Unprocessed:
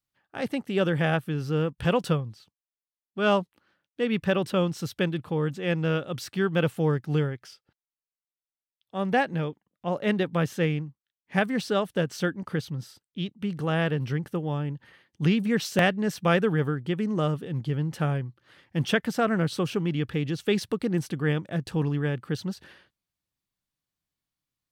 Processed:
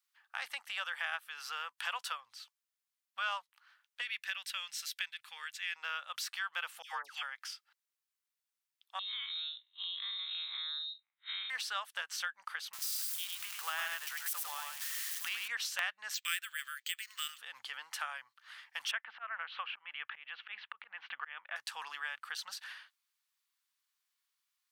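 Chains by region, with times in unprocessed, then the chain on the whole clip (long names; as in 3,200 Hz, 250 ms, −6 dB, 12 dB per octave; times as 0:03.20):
0:04.01–0:05.76: flat-topped bell 550 Hz −15 dB 2.8 octaves + notch filter 3,000 Hz, Q 29
0:06.82–0:07.23: high-pass filter 230 Hz 24 dB per octave + all-pass dispersion lows, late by 124 ms, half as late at 1,300 Hz
0:08.99–0:11.50: spectrum smeared in time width 97 ms + downward compressor, threshold −39 dBFS + voice inversion scrambler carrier 3,900 Hz
0:12.73–0:15.48: spike at every zero crossing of −26.5 dBFS + single-tap delay 101 ms −4 dB
0:16.14–0:17.38: inverse Chebyshev high-pass filter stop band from 290 Hz, stop band 80 dB + spectral tilt +4.5 dB per octave + bad sample-rate conversion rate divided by 4×, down filtered, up hold
0:18.91–0:21.56: Butterworth low-pass 3,000 Hz + volume swells 369 ms + multiband upward and downward compressor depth 40%
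whole clip: inverse Chebyshev high-pass filter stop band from 390 Hz, stop band 50 dB; downward compressor 2.5 to 1, threshold −44 dBFS; level +5 dB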